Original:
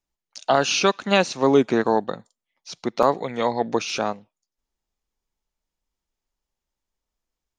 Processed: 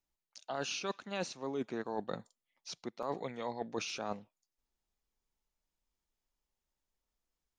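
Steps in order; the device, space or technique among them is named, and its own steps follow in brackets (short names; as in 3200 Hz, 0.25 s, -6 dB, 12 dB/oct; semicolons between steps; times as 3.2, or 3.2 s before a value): compression on the reversed sound (reverse; compressor 8:1, threshold -30 dBFS, peak gain reduction 18.5 dB; reverse); gain -4.5 dB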